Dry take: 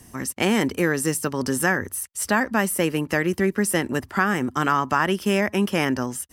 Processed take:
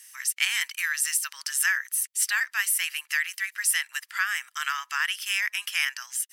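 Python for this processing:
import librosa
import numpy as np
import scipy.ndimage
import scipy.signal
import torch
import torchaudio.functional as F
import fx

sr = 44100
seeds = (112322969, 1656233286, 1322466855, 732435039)

y = scipy.signal.sosfilt(scipy.signal.cheby2(4, 70, 390.0, 'highpass', fs=sr, output='sos'), x)
y = F.gain(torch.from_numpy(y), 3.0).numpy()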